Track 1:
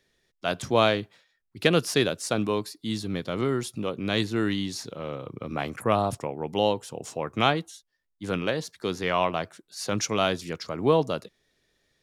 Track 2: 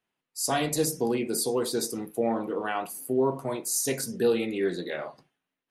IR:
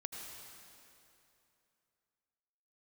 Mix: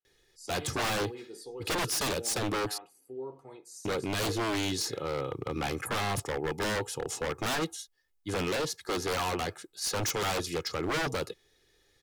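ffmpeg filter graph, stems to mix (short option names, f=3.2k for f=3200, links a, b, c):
-filter_complex "[0:a]highshelf=f=7.9k:g=3.5,asoftclip=type=hard:threshold=-20dB,adelay=50,volume=1.5dB,asplit=3[a][b][c];[a]atrim=end=2.78,asetpts=PTS-STARTPTS,afade=t=out:st=2.776:d=0.004:c=hsin[d];[b]atrim=start=2.78:end=3.85,asetpts=PTS-STARTPTS,volume=0[e];[c]atrim=start=3.85,asetpts=PTS-STARTPTS,afade=t=in:d=0.004:c=hsin[f];[d][e][f]concat=n=3:v=0:a=1[g];[1:a]lowpass=7.5k,volume=-18dB[h];[g][h]amix=inputs=2:normalize=0,aecho=1:1:2.4:0.61,aeval=exprs='0.0596*(abs(mod(val(0)/0.0596+3,4)-2)-1)':c=same"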